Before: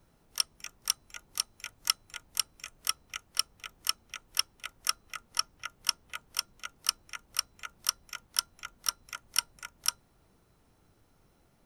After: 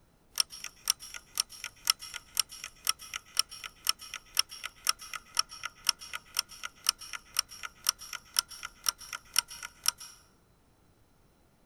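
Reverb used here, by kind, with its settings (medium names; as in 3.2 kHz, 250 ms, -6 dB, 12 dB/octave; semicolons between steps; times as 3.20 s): plate-style reverb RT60 0.84 s, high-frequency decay 0.7×, pre-delay 115 ms, DRR 15.5 dB; trim +1 dB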